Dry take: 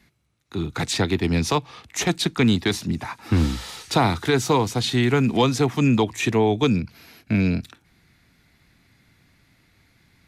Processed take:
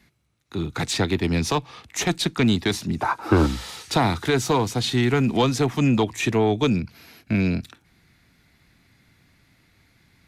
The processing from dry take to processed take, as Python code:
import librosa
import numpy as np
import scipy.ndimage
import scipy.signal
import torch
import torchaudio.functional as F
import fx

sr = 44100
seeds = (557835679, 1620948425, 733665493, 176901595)

y = fx.diode_clip(x, sr, knee_db=-9.0)
y = fx.spec_box(y, sr, start_s=3.01, length_s=0.46, low_hz=300.0, high_hz=1600.0, gain_db=11)